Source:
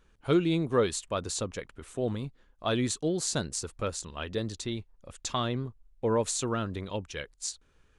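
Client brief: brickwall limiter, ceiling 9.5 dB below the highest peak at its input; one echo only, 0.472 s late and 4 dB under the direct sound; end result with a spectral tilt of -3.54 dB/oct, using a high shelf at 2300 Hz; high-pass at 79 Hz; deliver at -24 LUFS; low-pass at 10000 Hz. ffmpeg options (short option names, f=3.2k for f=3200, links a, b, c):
-af "highpass=79,lowpass=10k,highshelf=f=2.3k:g=7,alimiter=limit=-18.5dB:level=0:latency=1,aecho=1:1:472:0.631,volume=6dB"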